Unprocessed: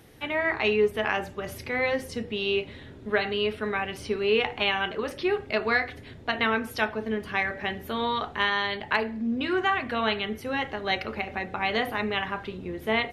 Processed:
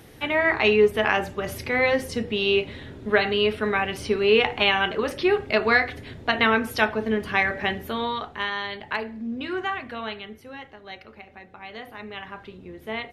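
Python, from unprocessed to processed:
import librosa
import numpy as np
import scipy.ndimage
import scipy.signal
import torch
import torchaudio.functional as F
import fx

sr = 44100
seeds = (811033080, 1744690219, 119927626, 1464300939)

y = fx.gain(x, sr, db=fx.line((7.7, 5.0), (8.3, -3.0), (9.64, -3.0), (10.82, -13.0), (11.7, -13.0), (12.42, -6.0)))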